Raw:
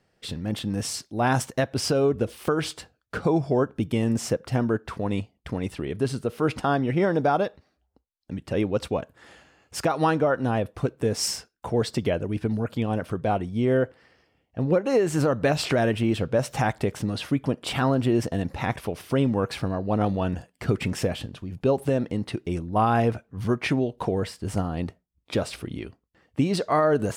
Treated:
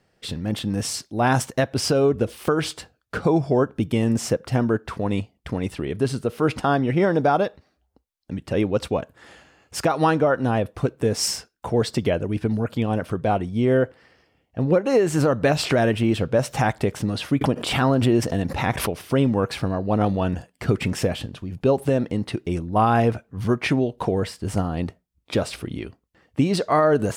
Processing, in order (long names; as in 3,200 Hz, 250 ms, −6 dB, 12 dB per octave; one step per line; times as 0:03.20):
0:17.41–0:19.03: background raised ahead of every attack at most 58 dB per second
level +3 dB